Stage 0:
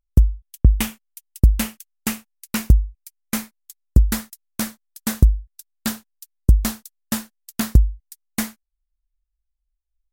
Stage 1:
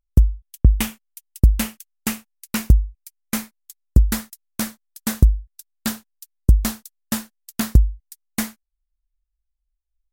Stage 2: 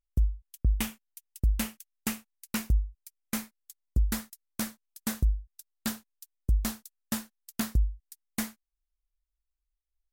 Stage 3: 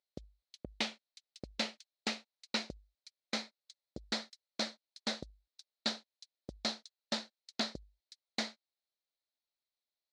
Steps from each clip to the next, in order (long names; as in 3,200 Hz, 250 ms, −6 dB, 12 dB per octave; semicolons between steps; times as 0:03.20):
no processing that can be heard
brickwall limiter −9.5 dBFS, peak gain reduction 8 dB; level −7.5 dB
loudspeaker in its box 400–5,200 Hz, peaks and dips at 590 Hz +6 dB, 1,100 Hz −8 dB, 1,600 Hz −5 dB, 2,800 Hz −4 dB, 4,100 Hz +10 dB; level +2 dB